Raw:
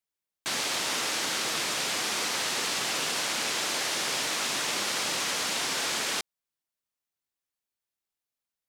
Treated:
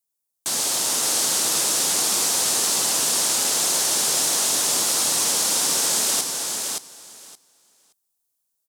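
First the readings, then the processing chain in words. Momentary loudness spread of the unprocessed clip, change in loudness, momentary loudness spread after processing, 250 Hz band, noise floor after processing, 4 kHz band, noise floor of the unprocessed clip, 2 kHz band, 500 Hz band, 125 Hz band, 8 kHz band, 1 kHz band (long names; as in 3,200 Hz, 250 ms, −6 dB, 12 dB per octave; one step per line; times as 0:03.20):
1 LU, +9.0 dB, 6 LU, +5.0 dB, −79 dBFS, +5.5 dB, below −85 dBFS, −1.5 dB, +5.0 dB, +4.5 dB, +13.0 dB, +3.5 dB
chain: drawn EQ curve 850 Hz 0 dB, 2,200 Hz −8 dB, 8,800 Hz +11 dB
automatic gain control gain up to 3.5 dB
on a send: repeating echo 572 ms, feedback 15%, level −4.5 dB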